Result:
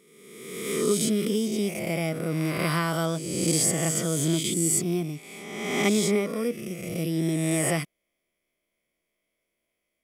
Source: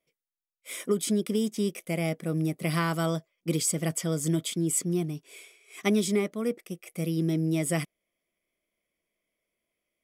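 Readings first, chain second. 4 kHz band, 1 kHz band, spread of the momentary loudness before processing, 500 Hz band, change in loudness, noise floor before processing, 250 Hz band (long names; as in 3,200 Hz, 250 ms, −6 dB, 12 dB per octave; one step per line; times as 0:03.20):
+5.0 dB, +3.5 dB, 10 LU, +3.0 dB, +3.0 dB, below −85 dBFS, +2.0 dB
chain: peak hold with a rise ahead of every peak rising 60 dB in 1.34 s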